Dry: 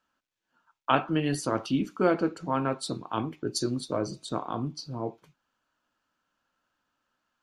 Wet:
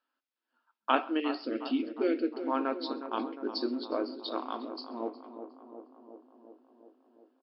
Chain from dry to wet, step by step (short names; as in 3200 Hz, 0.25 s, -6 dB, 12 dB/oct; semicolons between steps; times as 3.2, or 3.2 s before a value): in parallel at -4.5 dB: crossover distortion -47.5 dBFS; 1.2–2.42 on the sum: Chebyshev band-stop 440–2000 Hz, order 2; 4.22–4.69 tilt +3 dB/oct; on a send: tape echo 0.36 s, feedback 78%, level -9 dB, low-pass 1200 Hz; on the sum: FFT band-pass 220–5400 Hz; echo 0.132 s -24 dB; gain -6.5 dB